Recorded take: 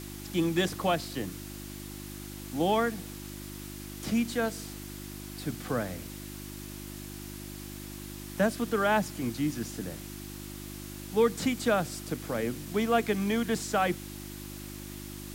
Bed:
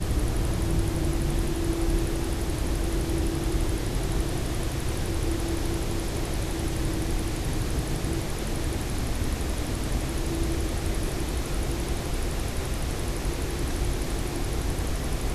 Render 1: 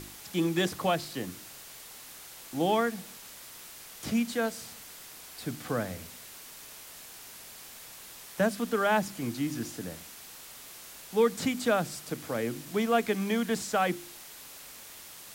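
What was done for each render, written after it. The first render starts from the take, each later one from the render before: de-hum 50 Hz, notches 7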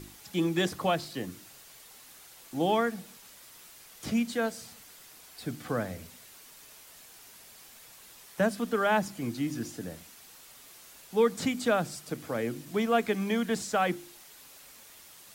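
noise reduction 6 dB, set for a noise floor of -48 dBFS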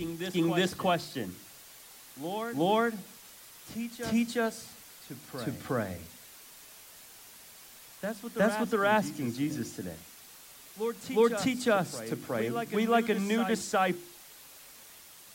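reverse echo 364 ms -9 dB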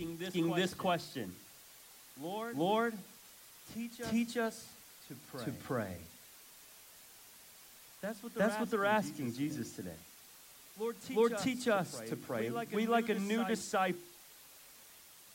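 trim -5.5 dB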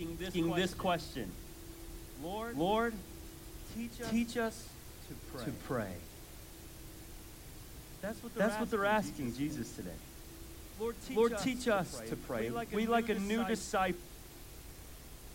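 add bed -24 dB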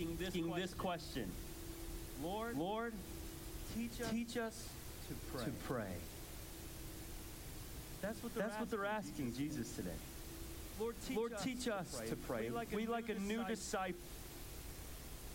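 compression 6:1, threshold -38 dBFS, peak gain reduction 13 dB

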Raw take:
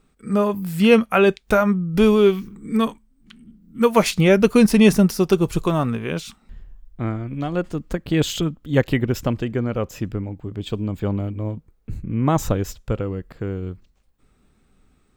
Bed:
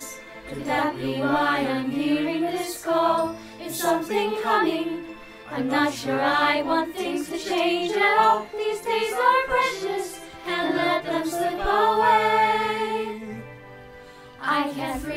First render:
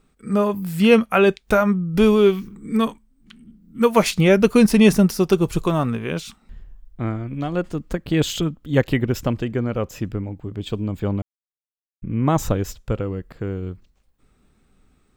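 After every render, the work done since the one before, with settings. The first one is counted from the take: 11.22–12.02 s: mute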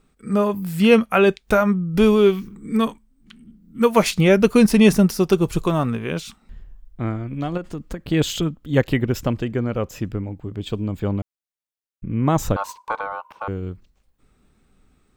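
7.57–8.07 s: compression, threshold -24 dBFS; 12.56–13.48 s: ring modulator 990 Hz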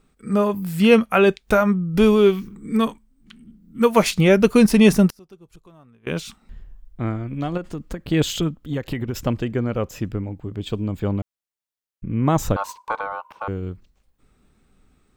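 5.08–6.07 s: inverted gate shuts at -18 dBFS, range -29 dB; 8.56–9.27 s: compression 12:1, threshold -20 dBFS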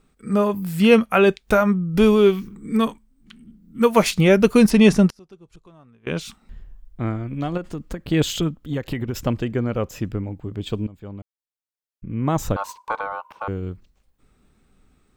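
4.70–6.21 s: low-pass 7.9 kHz; 10.87–12.99 s: fade in, from -17.5 dB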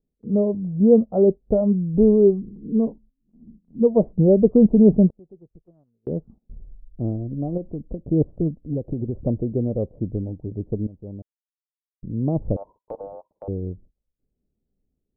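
steep low-pass 640 Hz 36 dB/octave; gate -47 dBFS, range -17 dB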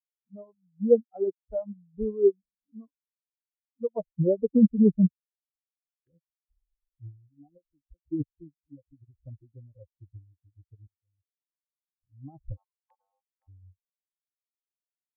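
expander on every frequency bin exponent 3; upward expansion 1.5:1, over -38 dBFS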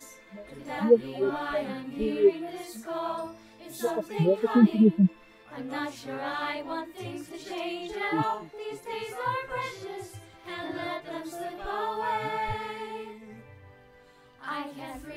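add bed -11.5 dB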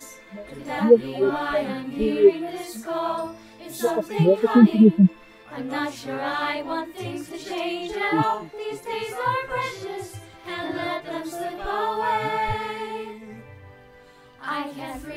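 trim +6 dB; peak limiter -3 dBFS, peak gain reduction 1.5 dB

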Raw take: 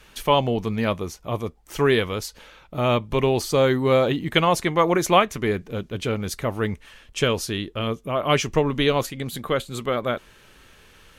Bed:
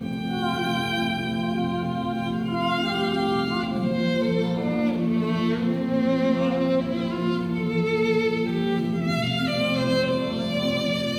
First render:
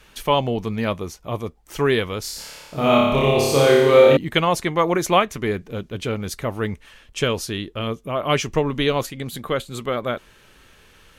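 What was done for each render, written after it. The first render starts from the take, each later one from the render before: 2.21–4.17 s: flutter echo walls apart 4.9 m, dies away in 1.2 s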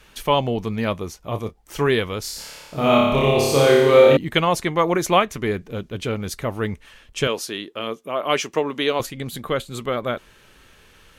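1.19–1.89 s: doubling 27 ms -11 dB; 7.27–9.00 s: high-pass 290 Hz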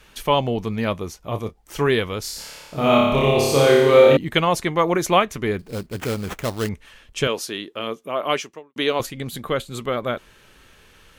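5.59–6.69 s: sample-rate reducer 4.7 kHz, jitter 20%; 8.29–8.76 s: fade out quadratic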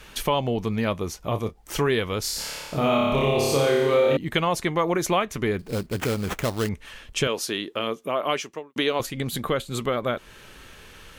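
in parallel at -2 dB: peak limiter -9.5 dBFS, peak gain reduction 8 dB; on the sum: compression 2:1, threshold -26 dBFS, peak gain reduction 11.5 dB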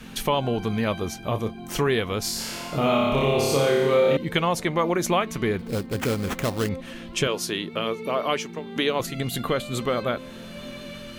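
add bed -14 dB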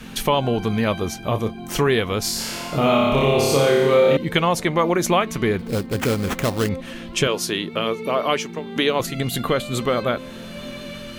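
trim +4 dB

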